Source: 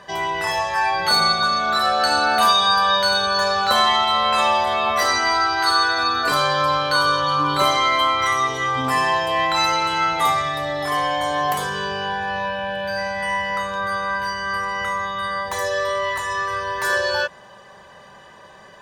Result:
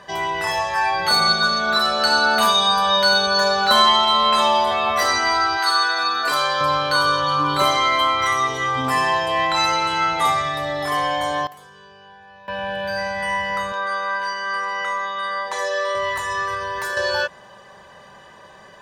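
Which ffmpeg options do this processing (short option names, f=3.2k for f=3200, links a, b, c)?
-filter_complex "[0:a]asettb=1/sr,asplit=3[a][b][c];[a]atrim=end=1.274[d];[b]atrim=start=1.27:end=4.71,asetpts=PTS-STARTPTS,afade=t=in:d=0.004:c=qsin,afade=t=out:st=3.436:d=0.004:c=qsin,aecho=1:1:4.8:0.63,atrim=end_sample=151704[e];[c]atrim=start=4.706[f];[d][e]acrossfade=d=0.004:c1=hsin:c2=qsin[g];[g][f]acrossfade=d=0.004:c1=qsin:c2=hsin,asettb=1/sr,asplit=3[h][i][j];[h]atrim=end=5.574[k];[i]atrim=start=5.57:end=6.61,asetpts=PTS-STARTPTS,afade=t=in:d=0.004:c=qsin,afade=t=out:st=1.036:d=0.004:c=qsin,highpass=f=560:p=1[l];[j]atrim=start=6.606[m];[k][l]acrossfade=d=0.004:c1=hsin:c2=qsin[n];[n][m]acrossfade=d=0.004:c1=qsin:c2=hsin,asettb=1/sr,asplit=3[o][p][q];[o]atrim=end=9.264[r];[p]atrim=start=9.26:end=10.58,asetpts=PTS-STARTPTS,afade=t=in:d=0.004:c=qsin,afade=t=out:st=1.316:d=0.004:c=qsin,lowpass=f=12k:w=0.5412,lowpass=f=12k:w=1.3066[s];[q]atrim=start=10.576[t];[r][s]acrossfade=d=0.004:c1=hsin:c2=qsin[u];[u][t]acrossfade=d=0.004:c1=qsin:c2=hsin,asettb=1/sr,asplit=3[v][w][x];[v]atrim=end=13.724[y];[w]atrim=start=13.72:end=15.95,asetpts=PTS-STARTPTS,afade=t=in:d=0.004:c=qsin,afade=t=out:st=2.226:d=0.004:c=qsin,highpass=340,lowpass=7.3k[z];[x]atrim=start=15.946[aa];[y][z]acrossfade=d=0.004:c1=hsin:c2=qsin[ab];[ab][aa]acrossfade=d=0.004:c1=qsin:c2=hsin,asettb=1/sr,asplit=3[ac][ad][ae];[ac]atrim=end=16.544[af];[ad]atrim=start=16.54:end=16.97,asetpts=PTS-STARTPTS,afade=t=in:d=0.004:c=qsin,afade=t=out:st=0.426:d=0.004:c=qsin,acompressor=threshold=-22dB:ratio=6:attack=3.2:release=140:knee=1:detection=peak[ag];[ae]atrim=start=16.966[ah];[af][ag]acrossfade=d=0.004:c1=hsin:c2=qsin[ai];[ai][ah]acrossfade=d=0.004:c1=qsin:c2=hsin,asplit=3[aj][ak][al];[aj]atrim=end=11.47,asetpts=PTS-STARTPTS,afade=t=out:st=11.1:d=0.37:c=log:silence=0.0944061[am];[ak]atrim=start=11.47:end=12.48,asetpts=PTS-STARTPTS,volume=-20.5dB[an];[al]atrim=start=12.48,asetpts=PTS-STARTPTS,afade=t=in:d=0.37:c=log:silence=0.0944061[ao];[am][an][ao]concat=n=3:v=0:a=1"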